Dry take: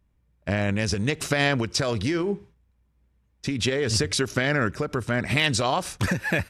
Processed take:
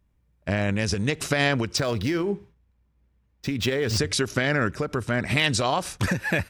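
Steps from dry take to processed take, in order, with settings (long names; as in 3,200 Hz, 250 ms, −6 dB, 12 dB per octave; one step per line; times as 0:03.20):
0:01.77–0:03.98: running median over 5 samples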